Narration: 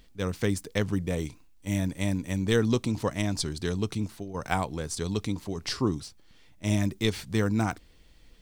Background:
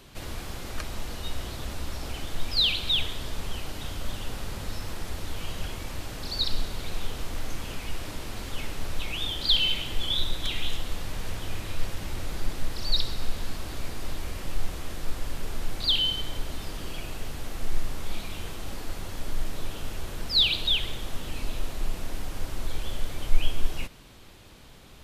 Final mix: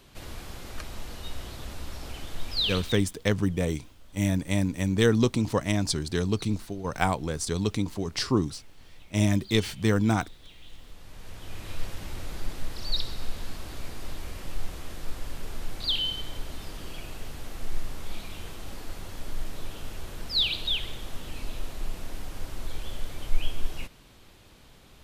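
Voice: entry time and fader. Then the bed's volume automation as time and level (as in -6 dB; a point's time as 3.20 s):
2.50 s, +2.5 dB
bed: 2.78 s -4 dB
3.12 s -21.5 dB
10.56 s -21.5 dB
11.72 s -3.5 dB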